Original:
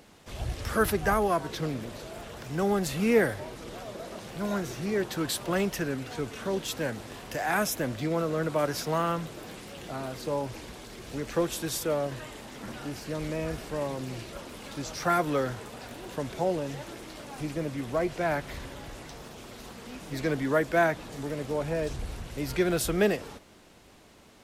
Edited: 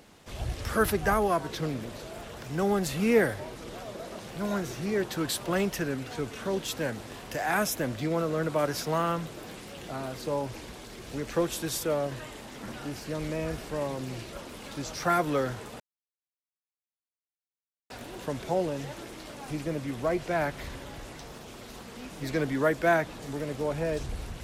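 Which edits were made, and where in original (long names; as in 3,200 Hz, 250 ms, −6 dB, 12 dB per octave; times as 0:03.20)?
0:15.80: splice in silence 2.10 s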